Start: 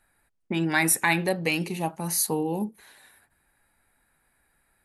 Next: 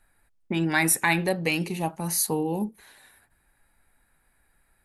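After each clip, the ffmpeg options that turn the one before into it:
ffmpeg -i in.wav -af "lowshelf=frequency=61:gain=9.5" out.wav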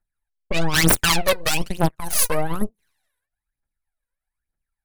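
ffmpeg -i in.wav -af "aeval=exprs='0.355*(cos(1*acos(clip(val(0)/0.355,-1,1)))-cos(1*PI/2))+0.0631*(cos(4*acos(clip(val(0)/0.355,-1,1)))-cos(4*PI/2))+0.00631*(cos(5*acos(clip(val(0)/0.355,-1,1)))-cos(5*PI/2))+0.0562*(cos(7*acos(clip(val(0)/0.355,-1,1)))-cos(7*PI/2))':channel_layout=same,aeval=exprs='0.422*sin(PI/2*2.82*val(0)/0.422)':channel_layout=same,aphaser=in_gain=1:out_gain=1:delay=2.1:decay=0.75:speed=1.1:type=triangular,volume=-4.5dB" out.wav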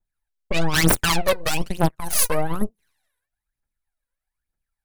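ffmpeg -i in.wav -af "adynamicequalizer=threshold=0.0251:dfrequency=1600:dqfactor=0.7:tfrequency=1600:tqfactor=0.7:attack=5:release=100:ratio=0.375:range=2.5:mode=cutabove:tftype=highshelf" out.wav

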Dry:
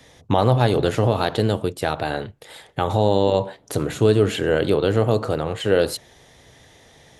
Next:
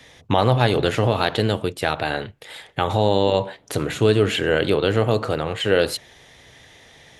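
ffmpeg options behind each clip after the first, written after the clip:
ffmpeg -i in.wav -af "equalizer=frequency=2400:width_type=o:width=1.7:gain=7,volume=-1dB" out.wav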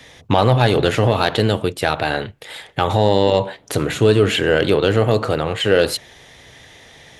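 ffmpeg -i in.wav -af "acontrast=31,volume=-1dB" out.wav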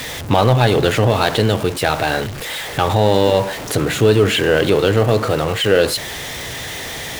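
ffmpeg -i in.wav -af "aeval=exprs='val(0)+0.5*0.0708*sgn(val(0))':channel_layout=same" out.wav

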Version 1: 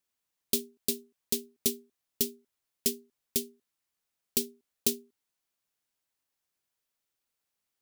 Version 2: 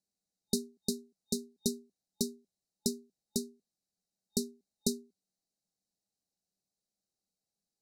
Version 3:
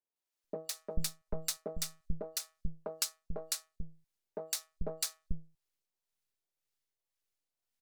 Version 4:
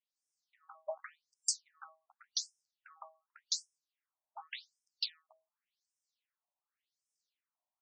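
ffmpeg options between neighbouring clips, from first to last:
ffmpeg -i in.wav -af "lowpass=8600,afftfilt=real='re*(1-between(b*sr/4096,850,3700))':imag='im*(1-between(b*sr/4096,850,3700))':win_size=4096:overlap=0.75,equalizer=frequency=190:width=3.7:gain=13.5,volume=-2dB" out.wav
ffmpeg -i in.wav -filter_complex "[0:a]aeval=exprs='abs(val(0))':channel_layout=same,acrossover=split=530[link_01][link_02];[link_01]aeval=exprs='val(0)*(1-0.5/2+0.5/2*cos(2*PI*1.9*n/s))':channel_layout=same[link_03];[link_02]aeval=exprs='val(0)*(1-0.5/2-0.5/2*cos(2*PI*1.9*n/s))':channel_layout=same[link_04];[link_03][link_04]amix=inputs=2:normalize=0,acrossover=split=230|1100[link_05][link_06][link_07];[link_07]adelay=160[link_08];[link_05]adelay=440[link_09];[link_09][link_06][link_08]amix=inputs=3:normalize=0,volume=4.5dB" out.wav
ffmpeg -i in.wav -af "asoftclip=type=hard:threshold=-26dB,afftfilt=real='re*between(b*sr/1024,780*pow(7200/780,0.5+0.5*sin(2*PI*0.88*pts/sr))/1.41,780*pow(7200/780,0.5+0.5*sin(2*PI*0.88*pts/sr))*1.41)':imag='im*between(b*sr/1024,780*pow(7200/780,0.5+0.5*sin(2*PI*0.88*pts/sr))/1.41,780*pow(7200/780,0.5+0.5*sin(2*PI*0.88*pts/sr))*1.41)':win_size=1024:overlap=0.75,volume=6.5dB" out.wav

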